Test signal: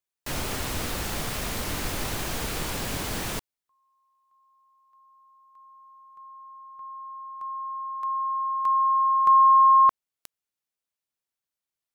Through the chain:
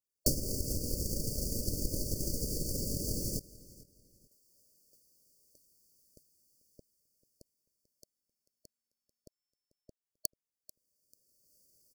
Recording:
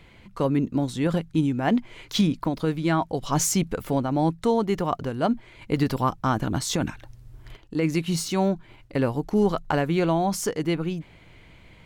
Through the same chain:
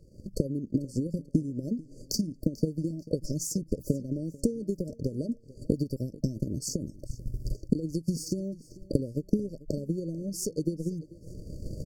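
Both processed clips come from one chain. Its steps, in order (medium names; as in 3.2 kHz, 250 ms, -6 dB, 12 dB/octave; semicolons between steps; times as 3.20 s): recorder AGC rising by 19 dB/s, up to +26 dB; dynamic bell 780 Hz, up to -7 dB, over -34 dBFS, Q 0.72; compression 6:1, threshold -26 dBFS; transient shaper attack +12 dB, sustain -6 dB; brick-wall FIR band-stop 630–4400 Hz; on a send: feedback delay 441 ms, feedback 31%, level -20 dB; on the sum: trim -4.5 dB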